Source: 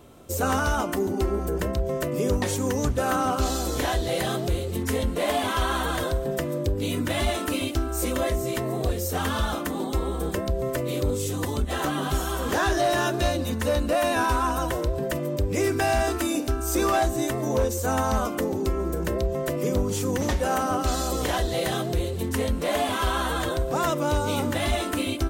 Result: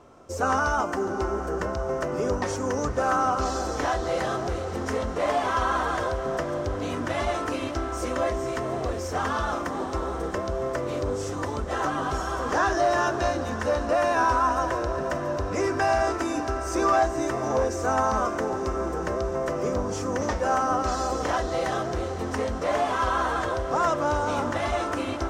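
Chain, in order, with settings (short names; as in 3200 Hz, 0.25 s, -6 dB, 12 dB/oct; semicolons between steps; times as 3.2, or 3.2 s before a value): EQ curve 180 Hz 0 dB, 1200 Hz +10 dB, 3800 Hz -4 dB, 5500 Hz +6 dB, 13000 Hz -17 dB; diffused feedback echo 0.567 s, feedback 77%, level -13 dB; gain -6 dB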